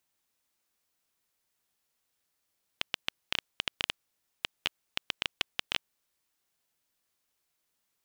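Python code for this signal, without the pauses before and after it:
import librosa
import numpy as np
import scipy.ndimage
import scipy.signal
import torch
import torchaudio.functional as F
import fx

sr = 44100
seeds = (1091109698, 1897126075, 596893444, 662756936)

y = fx.geiger_clicks(sr, seeds[0], length_s=3.46, per_s=6.9, level_db=-9.5)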